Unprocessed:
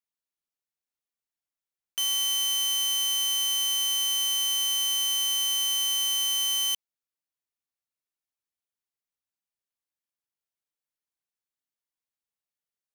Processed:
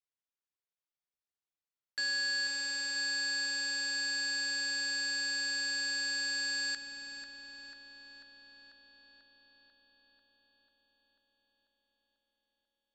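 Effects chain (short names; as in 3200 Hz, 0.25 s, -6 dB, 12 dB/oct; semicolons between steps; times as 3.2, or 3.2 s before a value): inverse Chebyshev low-pass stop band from 10000 Hz, stop band 40 dB; bell 1200 Hz -4.5 dB 0.26 oct; narrowing echo 0.492 s, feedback 78%, band-pass 1800 Hz, level -6.5 dB; ring modulator 1400 Hz; gain -1.5 dB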